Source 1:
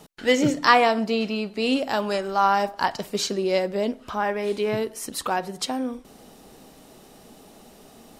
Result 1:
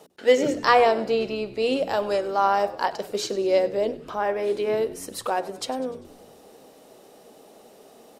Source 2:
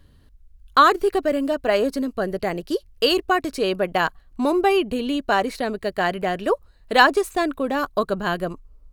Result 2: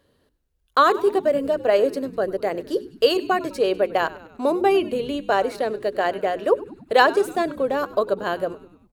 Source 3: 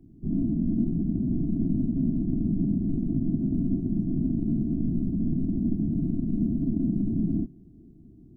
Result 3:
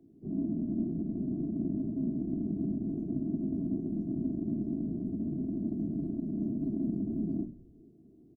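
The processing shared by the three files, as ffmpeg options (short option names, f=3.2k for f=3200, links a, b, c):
-filter_complex "[0:a]highpass=f=290:p=1,equalizer=f=490:w=1.2:g=9.5,bandreject=f=60:t=h:w=6,bandreject=f=120:t=h:w=6,bandreject=f=180:t=h:w=6,bandreject=f=240:t=h:w=6,bandreject=f=300:t=h:w=6,bandreject=f=360:t=h:w=6,bandreject=f=420:t=h:w=6,asplit=2[a][b];[b]asplit=5[c][d][e][f][g];[c]adelay=99,afreqshift=-83,volume=-18dB[h];[d]adelay=198,afreqshift=-166,volume=-23.2dB[i];[e]adelay=297,afreqshift=-249,volume=-28.4dB[j];[f]adelay=396,afreqshift=-332,volume=-33.6dB[k];[g]adelay=495,afreqshift=-415,volume=-38.8dB[l];[h][i][j][k][l]amix=inputs=5:normalize=0[m];[a][m]amix=inputs=2:normalize=0,volume=-4dB"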